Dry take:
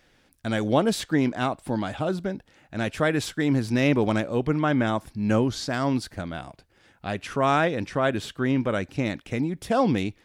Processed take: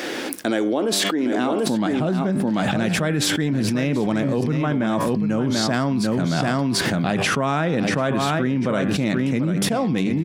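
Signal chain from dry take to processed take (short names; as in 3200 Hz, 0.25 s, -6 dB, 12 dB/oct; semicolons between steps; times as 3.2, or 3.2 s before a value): de-hum 98.44 Hz, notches 35; high-pass sweep 320 Hz -> 160 Hz, 1.21–1.9; echo 0.739 s -9 dB; fast leveller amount 100%; gain -7.5 dB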